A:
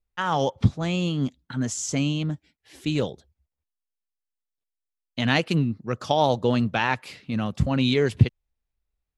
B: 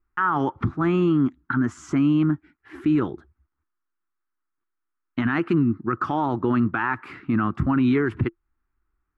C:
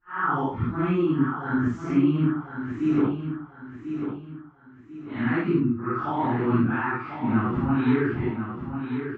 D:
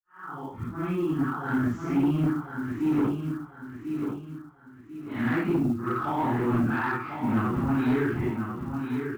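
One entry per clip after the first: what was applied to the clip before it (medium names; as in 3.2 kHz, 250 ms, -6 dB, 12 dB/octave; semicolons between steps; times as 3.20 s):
FFT filter 200 Hz 0 dB, 340 Hz +12 dB, 520 Hz -12 dB, 1.3 kHz +14 dB, 3.6 kHz -16 dB, 5.8 kHz -21 dB; in parallel at -1 dB: compression, threshold -28 dBFS, peak gain reduction 17 dB; on the sum: peak limiter -13 dBFS, peak gain reduction 10.5 dB
phase randomisation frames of 200 ms; distance through air 130 m; on a send: feedback delay 1043 ms, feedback 36%, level -8 dB; on the sum: trim -1.5 dB
fade-in on the opening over 1.54 s; short-mantissa float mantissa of 4-bit; saturation -18 dBFS, distortion -15 dB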